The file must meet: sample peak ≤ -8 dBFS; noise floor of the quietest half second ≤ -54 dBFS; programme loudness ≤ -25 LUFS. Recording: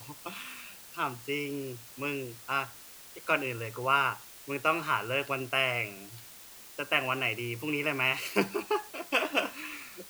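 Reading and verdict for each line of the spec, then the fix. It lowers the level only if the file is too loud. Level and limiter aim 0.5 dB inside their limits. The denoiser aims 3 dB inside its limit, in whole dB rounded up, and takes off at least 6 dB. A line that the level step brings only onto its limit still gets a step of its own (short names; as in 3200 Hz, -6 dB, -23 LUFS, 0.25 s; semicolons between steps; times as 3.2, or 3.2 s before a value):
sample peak -11.0 dBFS: OK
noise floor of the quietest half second -50 dBFS: fail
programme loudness -31.0 LUFS: OK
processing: denoiser 7 dB, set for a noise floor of -50 dBFS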